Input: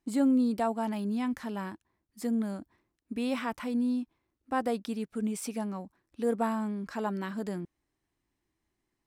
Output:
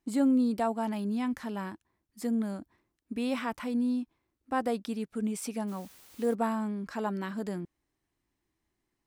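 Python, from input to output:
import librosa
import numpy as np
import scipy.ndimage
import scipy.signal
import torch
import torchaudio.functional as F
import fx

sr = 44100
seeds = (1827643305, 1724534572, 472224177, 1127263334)

y = fx.dmg_noise_colour(x, sr, seeds[0], colour='white', level_db=-56.0, at=(5.67, 6.33), fade=0.02)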